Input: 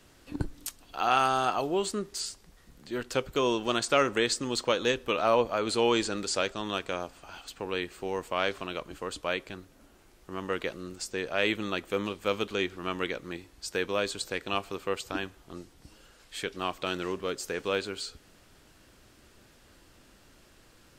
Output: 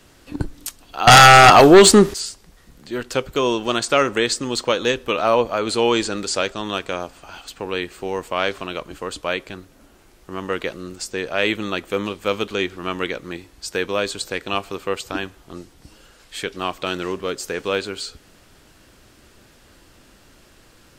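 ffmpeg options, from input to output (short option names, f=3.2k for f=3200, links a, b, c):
-filter_complex "[0:a]asettb=1/sr,asplit=3[a][b][c];[a]atrim=end=1.074[d];[b]atrim=start=1.07:end=2.14,asetpts=PTS-STARTPTS,afade=t=in:d=0.004:c=qsin,afade=t=out:st=1.066:d=0.004:c=qsin,aeval=exprs='0.316*sin(PI/2*4.47*val(0)/0.316)':c=same[e];[c]atrim=start=2.136[f];[d][e]acrossfade=d=0.004:c1=hsin:c2=qsin[g];[g][f]acrossfade=d=0.004:c1=qsin:c2=hsin,volume=7dB"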